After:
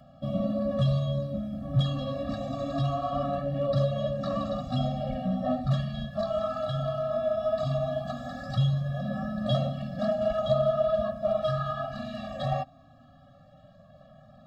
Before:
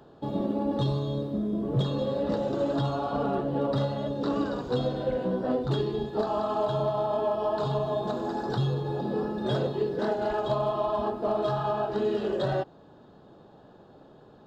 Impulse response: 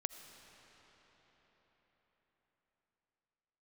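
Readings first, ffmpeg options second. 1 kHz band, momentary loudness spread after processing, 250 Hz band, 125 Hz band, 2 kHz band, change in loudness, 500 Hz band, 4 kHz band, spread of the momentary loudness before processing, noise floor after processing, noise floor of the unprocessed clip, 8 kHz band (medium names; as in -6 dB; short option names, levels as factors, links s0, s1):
-3.0 dB, 7 LU, -2.0 dB, +3.0 dB, -1.5 dB, -0.5 dB, -1.0 dB, +0.5 dB, 3 LU, -55 dBFS, -53 dBFS, no reading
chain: -af "flanger=delay=1.4:depth=1.2:regen=-36:speed=0.2:shape=sinusoidal,afftfilt=real='re*eq(mod(floor(b*sr/1024/270),2),0)':imag='im*eq(mod(floor(b*sr/1024/270),2),0)':win_size=1024:overlap=0.75,volume=2.11"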